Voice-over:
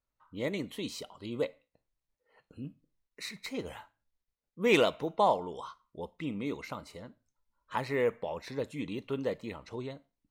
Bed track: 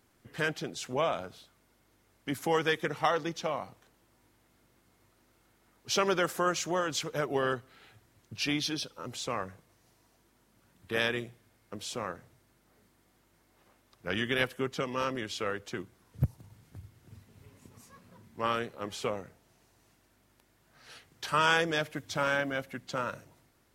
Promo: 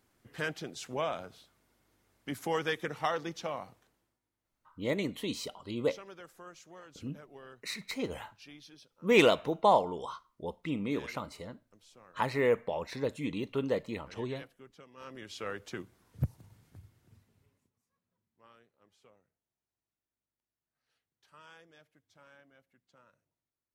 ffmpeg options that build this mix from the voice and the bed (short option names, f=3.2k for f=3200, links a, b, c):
-filter_complex "[0:a]adelay=4450,volume=2dB[a];[1:a]volume=14.5dB,afade=t=out:st=3.69:d=0.51:silence=0.133352,afade=t=in:st=14.96:d=0.68:silence=0.11885,afade=t=out:st=16.45:d=1.27:silence=0.0446684[b];[a][b]amix=inputs=2:normalize=0"